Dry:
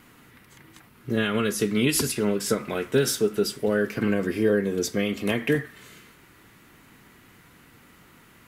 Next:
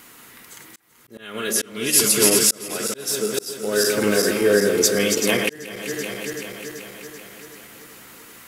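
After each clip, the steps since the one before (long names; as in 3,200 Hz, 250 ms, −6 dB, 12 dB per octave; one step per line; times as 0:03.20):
feedback delay that plays each chunk backwards 192 ms, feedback 77%, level −6 dB
volume swells 596 ms
bass and treble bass −10 dB, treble +9 dB
level +5.5 dB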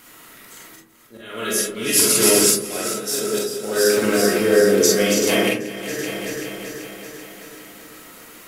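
comb and all-pass reverb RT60 0.58 s, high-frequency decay 0.3×, pre-delay 0 ms, DRR −2.5 dB
level −2.5 dB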